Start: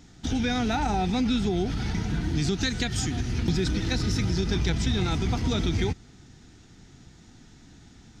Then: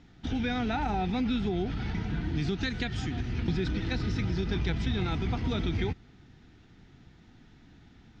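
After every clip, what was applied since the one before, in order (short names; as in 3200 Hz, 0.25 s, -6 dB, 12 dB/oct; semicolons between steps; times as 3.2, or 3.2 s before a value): Chebyshev low-pass 2900 Hz, order 2; gain -3 dB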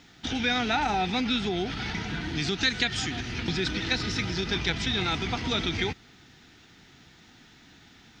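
tilt +3 dB/oct; gain +6 dB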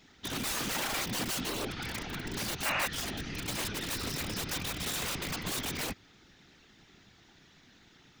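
wrapped overs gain 23 dB; whisperiser; painted sound noise, 2.65–2.87, 520–2900 Hz -26 dBFS; gain -5.5 dB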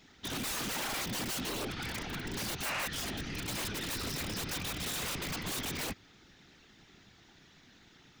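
overloaded stage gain 32.5 dB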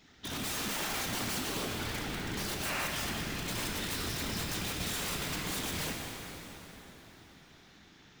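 plate-style reverb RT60 4.3 s, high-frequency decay 0.75×, DRR 0 dB; gain -1.5 dB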